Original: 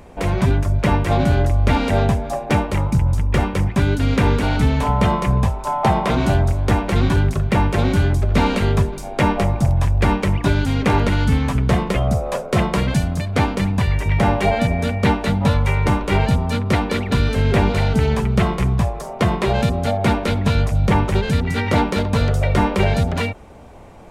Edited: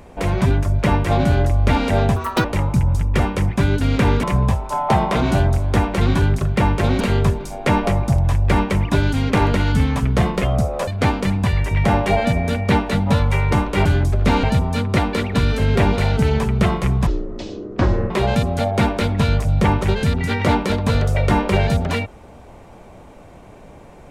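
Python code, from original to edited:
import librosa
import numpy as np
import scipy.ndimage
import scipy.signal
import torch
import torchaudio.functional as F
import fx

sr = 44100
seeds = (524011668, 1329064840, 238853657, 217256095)

y = fx.edit(x, sr, fx.speed_span(start_s=2.16, length_s=0.47, speed=1.65),
    fx.cut(start_s=4.42, length_s=0.76),
    fx.move(start_s=7.95, length_s=0.58, to_s=16.2),
    fx.cut(start_s=12.4, length_s=0.82),
    fx.speed_span(start_s=18.83, length_s=0.54, speed=0.52), tone=tone)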